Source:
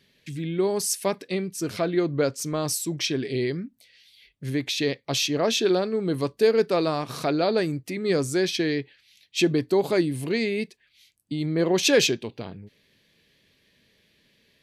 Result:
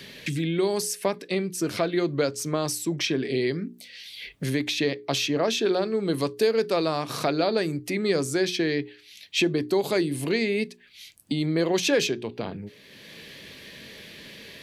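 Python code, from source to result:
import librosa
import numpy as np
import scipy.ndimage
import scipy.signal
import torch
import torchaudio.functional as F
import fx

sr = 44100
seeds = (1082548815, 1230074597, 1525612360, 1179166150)

y = fx.low_shelf(x, sr, hz=140.0, db=-4.5)
y = fx.hum_notches(y, sr, base_hz=60, count=7)
y = fx.band_squash(y, sr, depth_pct=70)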